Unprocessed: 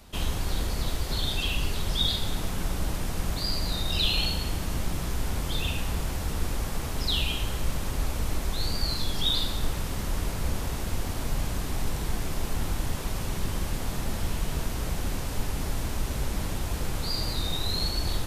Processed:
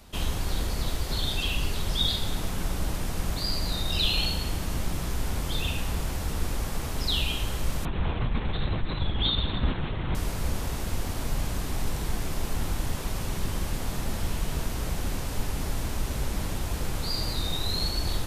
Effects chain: 7.85–10.15 s: LPC vocoder at 8 kHz whisper

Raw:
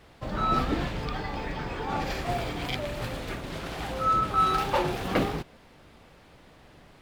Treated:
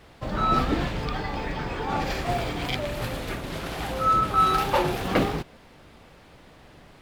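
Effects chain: 2.91–5.02 s: peaking EQ 12 kHz +5.5 dB 0.45 oct; trim +3 dB

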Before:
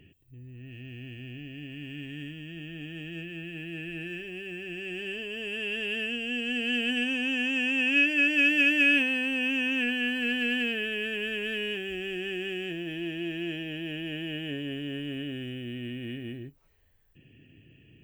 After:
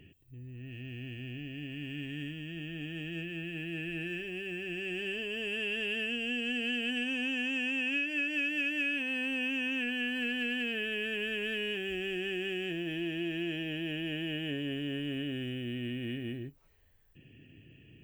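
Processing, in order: compression, threshold -30 dBFS, peak gain reduction 11 dB

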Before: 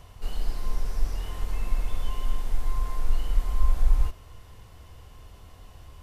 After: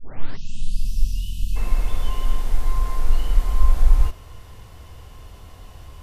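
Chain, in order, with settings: tape start-up on the opening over 0.91 s; spectral selection erased 0.37–1.56 s, 250–2500 Hz; trim +6 dB

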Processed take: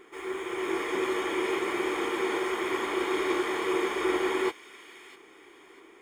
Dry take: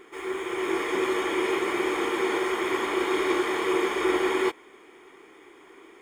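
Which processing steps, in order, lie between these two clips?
feedback echo behind a high-pass 648 ms, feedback 32%, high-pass 2.1 kHz, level -13 dB; trim -3 dB

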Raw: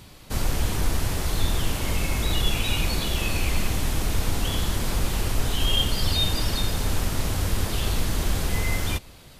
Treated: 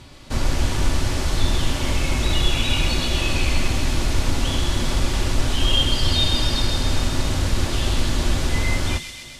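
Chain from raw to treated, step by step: low-pass 7.3 kHz 12 dB/octave; feedback echo behind a high-pass 129 ms, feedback 71%, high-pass 2.9 kHz, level -4 dB; on a send at -9.5 dB: reverberation RT60 0.15 s, pre-delay 3 ms; on the sum: trim +3 dB

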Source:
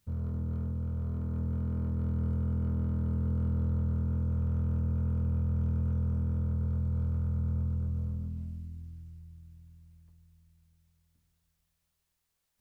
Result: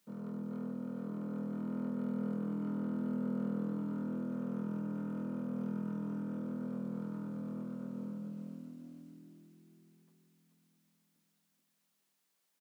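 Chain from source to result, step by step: steep high-pass 170 Hz 48 dB/octave; frequency-shifting echo 430 ms, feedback 32%, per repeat +42 Hz, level -7 dB; trim +1 dB

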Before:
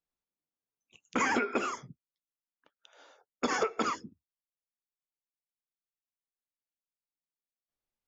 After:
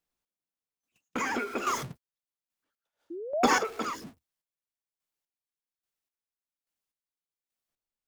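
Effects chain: jump at every zero crossing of -38 dBFS; gate -40 dBFS, range -46 dB; painted sound rise, 3.10–3.55 s, 320–990 Hz -34 dBFS; square tremolo 1.2 Hz, depth 65%, duty 30%; trim +5.5 dB

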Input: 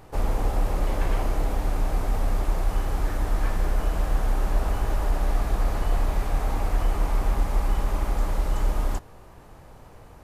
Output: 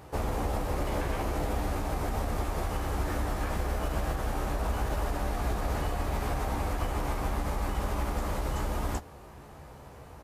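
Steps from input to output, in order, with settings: high-pass 43 Hz 12 dB/octave; peak limiter -21 dBFS, peak gain reduction 6.5 dB; doubling 14 ms -6.5 dB

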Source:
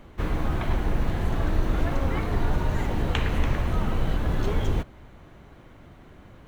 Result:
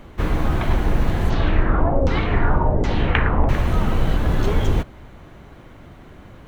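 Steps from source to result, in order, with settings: 1.30–3.49 s: LFO low-pass saw down 1.3 Hz 470–5600 Hz; trim +6 dB

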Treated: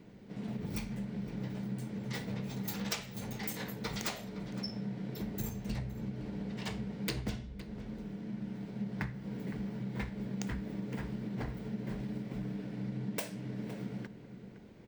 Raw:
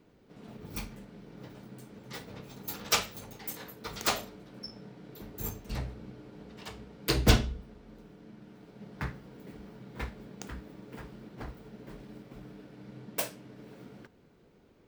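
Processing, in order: graphic EQ with 31 bands 125 Hz +7 dB, 200 Hz +10 dB, 1.25 kHz -5 dB, 2 kHz +4 dB, 12.5 kHz -9 dB; compression 20:1, threshold -38 dBFS, peak gain reduction 27 dB; echo from a far wall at 88 m, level -12 dB; trim +4.5 dB

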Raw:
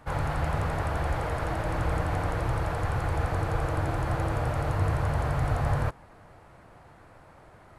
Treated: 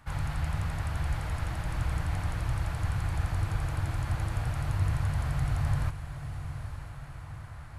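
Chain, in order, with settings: peaking EQ 460 Hz -15 dB 1.7 oct; echo that smears into a reverb 949 ms, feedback 55%, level -10 dB; dynamic bell 1.3 kHz, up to -4 dB, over -50 dBFS, Q 0.75

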